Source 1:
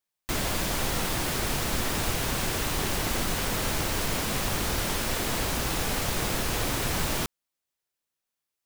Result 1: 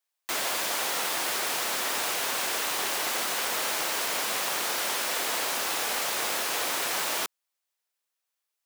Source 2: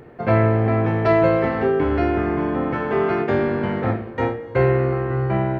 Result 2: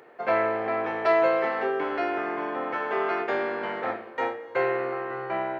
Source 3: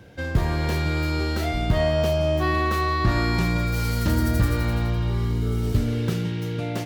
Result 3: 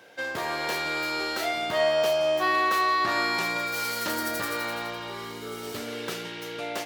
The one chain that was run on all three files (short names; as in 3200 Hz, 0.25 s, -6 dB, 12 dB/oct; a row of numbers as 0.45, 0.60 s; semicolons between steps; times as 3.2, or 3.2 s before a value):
HPF 570 Hz 12 dB/oct; match loudness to -27 LUFS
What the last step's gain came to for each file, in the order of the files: +2.0, -2.0, +2.5 dB